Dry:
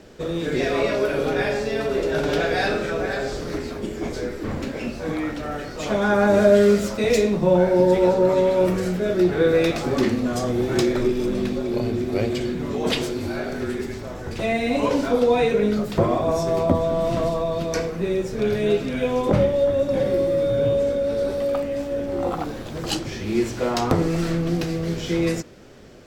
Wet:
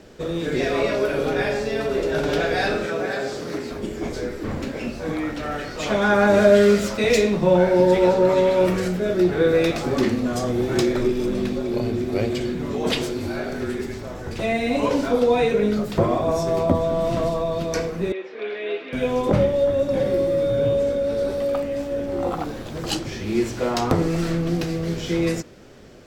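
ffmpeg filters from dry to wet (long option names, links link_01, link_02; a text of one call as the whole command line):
ffmpeg -i in.wav -filter_complex "[0:a]asettb=1/sr,asplit=3[link_01][link_02][link_03];[link_01]atrim=end=2.854[link_04];[link_02]atrim=start=2.85:end=3.7,asetpts=PTS-STARTPTS,afade=type=in:duration=0.004:curve=qsin,afade=type=out:start_time=0.846:duration=0.004:curve=qsin,highpass=140[link_05];[link_03]atrim=start=3.696[link_06];[link_04][link_05]acrossfade=duration=0.004:curve1=hsin:curve2=qsin[link_07];[link_07][link_06]acrossfade=duration=0.004:curve1=qsin:curve2=hsin,asettb=1/sr,asplit=3[link_08][link_09][link_10];[link_08]atrim=end=5.374[link_11];[link_09]atrim=start=5.37:end=8.88,asetpts=PTS-STARTPTS,afade=type=in:duration=0.004:curve=qsin,afade=type=out:start_time=3.506:duration=0.004:curve=qsin,equalizer=frequency=2500:width=0.51:gain=4.5[link_12];[link_10]atrim=start=8.876[link_13];[link_11][link_12]acrossfade=duration=0.004:curve1=hsin:curve2=qsin[link_14];[link_14][link_13]acrossfade=duration=0.004:curve1=qsin:curve2=hsin,asettb=1/sr,asplit=3[link_15][link_16][link_17];[link_15]atrim=end=18.124[link_18];[link_16]atrim=start=18.12:end=18.93,asetpts=PTS-STARTPTS,afade=type=in:duration=0.004:curve=qsin,afade=type=out:start_time=0.806:duration=0.004:curve=qsin,highpass=frequency=390:width=0.5412,highpass=frequency=390:width=1.3066,equalizer=frequency=400:width_type=q:width=4:gain=-4,equalizer=frequency=570:width_type=q:width=4:gain=-8,equalizer=frequency=860:width_type=q:width=4:gain=-5,equalizer=frequency=1400:width_type=q:width=4:gain=-4,equalizer=frequency=2100:width_type=q:width=4:gain=3,lowpass=frequency=3400:width=0.5412,lowpass=frequency=3400:width=1.3066[link_19];[link_17]atrim=start=18.926[link_20];[link_18][link_19]acrossfade=duration=0.004:curve1=hsin:curve2=qsin[link_21];[link_21][link_20]acrossfade=duration=0.004:curve1=qsin:curve2=hsin" out.wav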